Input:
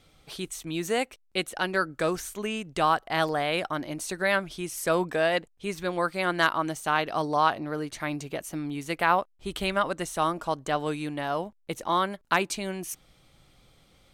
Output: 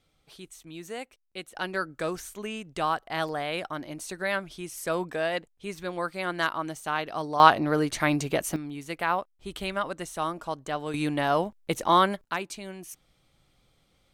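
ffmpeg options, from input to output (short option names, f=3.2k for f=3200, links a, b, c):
-af "asetnsamples=n=441:p=0,asendcmd='1.55 volume volume -4dB;7.4 volume volume 7dB;8.56 volume volume -4dB;10.94 volume volume 5dB;12.24 volume volume -7dB',volume=-10.5dB"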